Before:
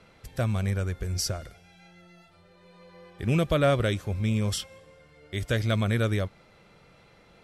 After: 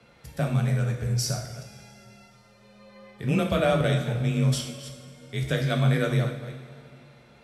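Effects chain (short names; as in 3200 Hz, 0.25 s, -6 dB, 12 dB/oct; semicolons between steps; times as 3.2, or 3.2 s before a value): reverse delay 0.181 s, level -11.5 dB; frequency shift +29 Hz; two-slope reverb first 0.58 s, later 3 s, from -16 dB, DRR 1.5 dB; gain -1.5 dB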